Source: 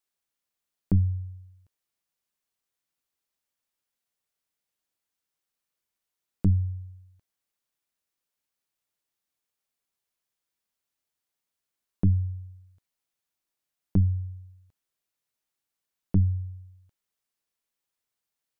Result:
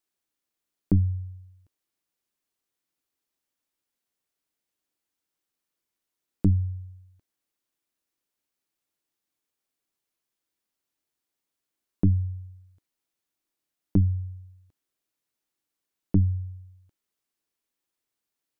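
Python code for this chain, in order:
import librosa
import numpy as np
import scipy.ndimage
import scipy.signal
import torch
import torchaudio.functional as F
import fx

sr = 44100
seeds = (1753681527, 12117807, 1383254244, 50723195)

y = fx.peak_eq(x, sr, hz=310.0, db=7.5, octaves=0.75)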